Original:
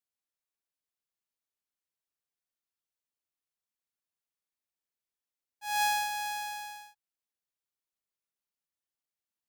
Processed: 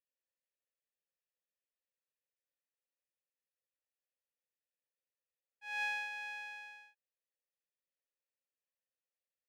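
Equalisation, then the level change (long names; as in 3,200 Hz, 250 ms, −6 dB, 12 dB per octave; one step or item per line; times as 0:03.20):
formant filter e
+6.5 dB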